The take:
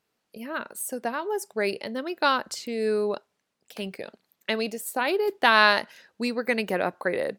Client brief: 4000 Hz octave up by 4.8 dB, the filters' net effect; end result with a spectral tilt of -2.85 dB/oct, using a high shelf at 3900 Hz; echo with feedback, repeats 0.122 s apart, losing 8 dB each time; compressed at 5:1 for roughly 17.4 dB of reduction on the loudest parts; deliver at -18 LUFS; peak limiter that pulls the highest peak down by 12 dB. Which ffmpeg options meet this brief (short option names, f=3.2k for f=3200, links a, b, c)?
-af "highshelf=f=3.9k:g=-4.5,equalizer=f=4k:t=o:g=8,acompressor=threshold=-32dB:ratio=5,alimiter=level_in=2.5dB:limit=-24dB:level=0:latency=1,volume=-2.5dB,aecho=1:1:122|244|366|488|610:0.398|0.159|0.0637|0.0255|0.0102,volume=19dB"